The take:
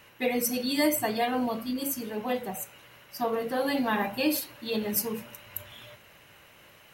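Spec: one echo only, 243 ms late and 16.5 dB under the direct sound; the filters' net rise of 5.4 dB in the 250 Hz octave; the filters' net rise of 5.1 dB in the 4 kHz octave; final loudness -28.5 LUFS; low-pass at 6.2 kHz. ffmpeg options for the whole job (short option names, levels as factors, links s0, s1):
-af "lowpass=6200,equalizer=f=250:t=o:g=6,equalizer=f=4000:t=o:g=7,aecho=1:1:243:0.15,volume=0.75"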